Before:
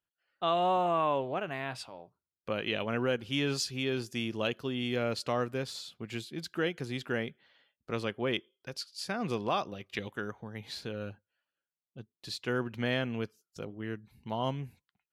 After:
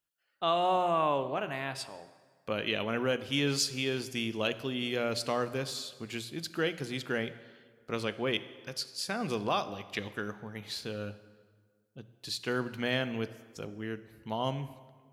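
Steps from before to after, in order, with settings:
high-shelf EQ 4,500 Hz +6.5 dB
mains-hum notches 60/120/180 Hz
dense smooth reverb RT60 1.7 s, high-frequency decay 0.7×, DRR 12.5 dB

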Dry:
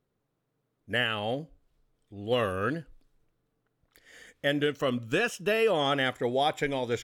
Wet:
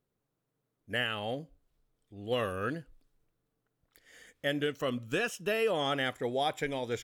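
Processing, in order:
high-shelf EQ 7,600 Hz +5 dB
level −4.5 dB

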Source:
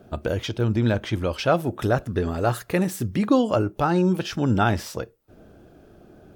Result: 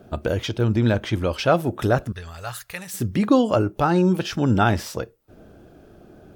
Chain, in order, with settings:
0:02.12–0:02.94: guitar amp tone stack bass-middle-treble 10-0-10
level +2 dB

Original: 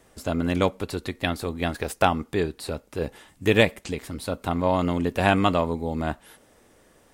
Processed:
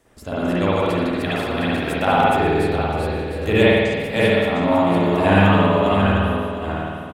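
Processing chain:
feedback delay that plays each chunk backwards 354 ms, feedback 46%, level −1.5 dB
single-tap delay 116 ms −16.5 dB
spring reverb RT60 1.5 s, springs 51 ms, chirp 40 ms, DRR −8 dB
level −4.5 dB

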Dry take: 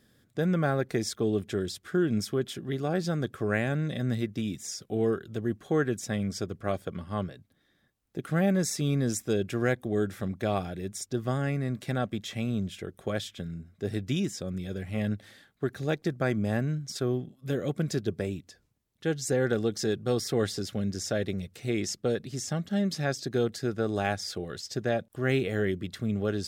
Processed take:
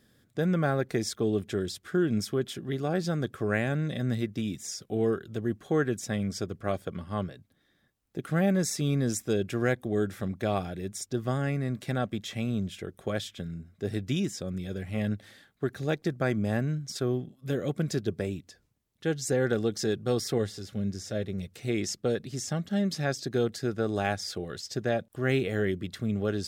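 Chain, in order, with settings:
0:20.38–0:21.38: harmonic and percussive parts rebalanced percussive −10 dB

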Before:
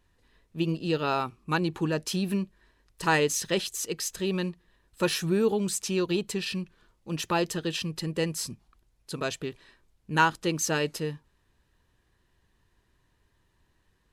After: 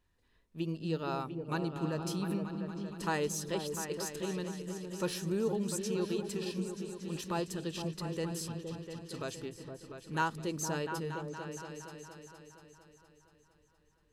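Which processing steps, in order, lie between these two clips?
dynamic equaliser 2,400 Hz, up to −6 dB, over −42 dBFS, Q 1
echo whose low-pass opens from repeat to repeat 233 ms, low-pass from 200 Hz, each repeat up 2 octaves, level −3 dB
level −8 dB

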